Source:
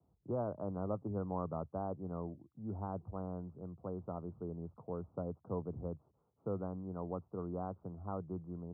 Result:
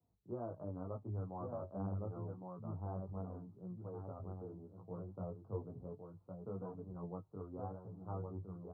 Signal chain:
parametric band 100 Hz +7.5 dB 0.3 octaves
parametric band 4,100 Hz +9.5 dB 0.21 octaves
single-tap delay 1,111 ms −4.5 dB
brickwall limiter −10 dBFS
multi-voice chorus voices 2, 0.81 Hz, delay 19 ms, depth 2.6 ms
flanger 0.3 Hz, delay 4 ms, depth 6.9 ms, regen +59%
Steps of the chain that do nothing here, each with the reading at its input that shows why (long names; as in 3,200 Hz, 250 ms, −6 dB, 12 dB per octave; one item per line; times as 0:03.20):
parametric band 4,100 Hz: nothing at its input above 1,100 Hz
brickwall limiter −10 dBFS: peak of its input −22.0 dBFS